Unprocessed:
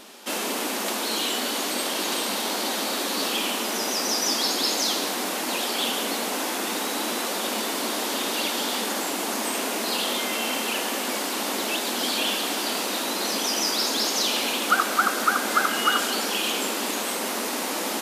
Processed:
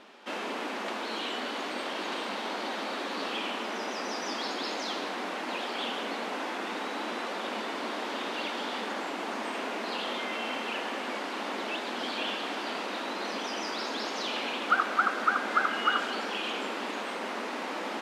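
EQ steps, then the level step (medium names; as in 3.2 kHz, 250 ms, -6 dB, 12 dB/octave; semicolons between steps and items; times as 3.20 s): band-pass filter 2.2 kHz, Q 0.72; tilt EQ -4.5 dB/octave; 0.0 dB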